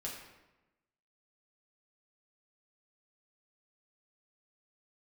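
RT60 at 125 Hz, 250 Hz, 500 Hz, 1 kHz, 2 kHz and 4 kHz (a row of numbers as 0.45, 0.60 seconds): 1.2, 1.2, 1.1, 1.0, 0.95, 0.75 seconds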